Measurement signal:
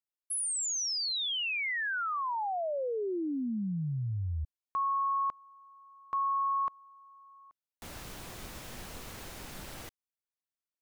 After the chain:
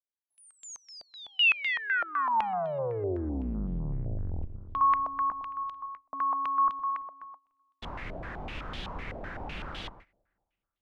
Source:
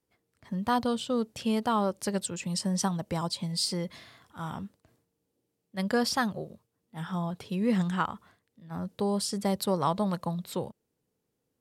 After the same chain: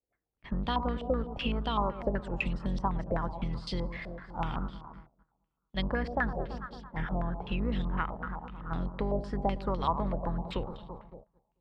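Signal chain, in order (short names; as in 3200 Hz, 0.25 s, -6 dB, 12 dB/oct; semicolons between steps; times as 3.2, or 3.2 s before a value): octaver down 2 oct, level +4 dB; on a send: echo with dull and thin repeats by turns 0.111 s, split 1100 Hz, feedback 71%, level -13 dB; on the sum: gate -54 dBFS, range -18 dB; compressor 4:1, threshold -33 dBFS; stepped low-pass 7.9 Hz 640–3400 Hz; gain +2.5 dB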